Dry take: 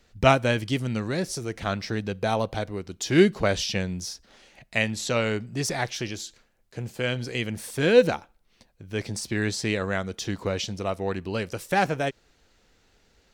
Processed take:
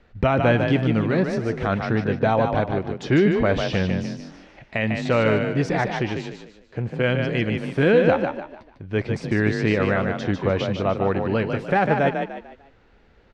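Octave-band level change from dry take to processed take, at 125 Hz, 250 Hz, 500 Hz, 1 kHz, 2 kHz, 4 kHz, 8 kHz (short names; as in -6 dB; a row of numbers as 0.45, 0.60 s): +6.5 dB, +6.0 dB, +4.5 dB, +4.5 dB, +3.5 dB, -3.0 dB, under -10 dB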